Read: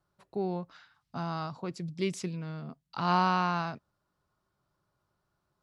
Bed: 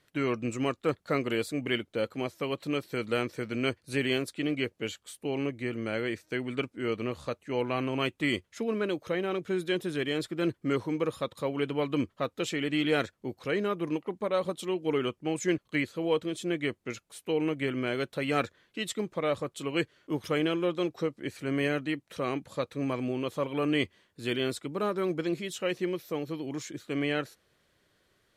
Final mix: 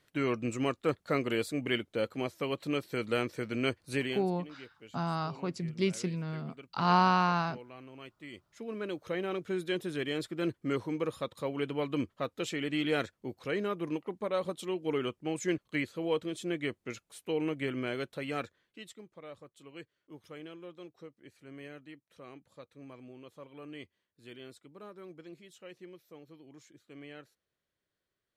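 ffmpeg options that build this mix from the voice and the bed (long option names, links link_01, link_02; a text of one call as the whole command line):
ffmpeg -i stem1.wav -i stem2.wav -filter_complex "[0:a]adelay=3800,volume=1.5dB[link_01];[1:a]volume=14dB,afade=type=out:start_time=3.93:duration=0.33:silence=0.133352,afade=type=in:start_time=8.32:duration=0.88:silence=0.16788,afade=type=out:start_time=17.79:duration=1.22:silence=0.177828[link_02];[link_01][link_02]amix=inputs=2:normalize=0" out.wav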